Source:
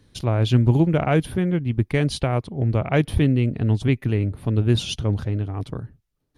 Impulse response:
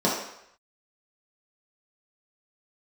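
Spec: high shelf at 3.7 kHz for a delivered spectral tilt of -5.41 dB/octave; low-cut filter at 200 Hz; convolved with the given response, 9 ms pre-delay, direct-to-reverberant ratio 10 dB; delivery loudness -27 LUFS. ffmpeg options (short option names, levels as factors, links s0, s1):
-filter_complex "[0:a]highpass=200,highshelf=f=3700:g=4.5,asplit=2[s0][s1];[1:a]atrim=start_sample=2205,adelay=9[s2];[s1][s2]afir=irnorm=-1:irlink=0,volume=0.0531[s3];[s0][s3]amix=inputs=2:normalize=0,volume=0.668"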